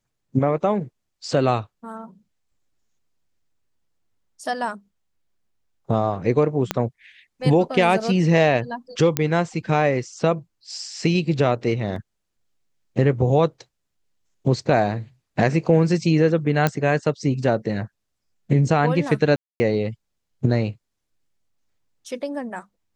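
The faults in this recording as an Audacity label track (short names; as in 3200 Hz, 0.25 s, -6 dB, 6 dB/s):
6.710000	6.710000	pop -6 dBFS
9.170000	9.170000	pop -3 dBFS
11.960000	11.960000	gap 2.9 ms
16.670000	16.670000	pop -6 dBFS
19.360000	19.600000	gap 0.24 s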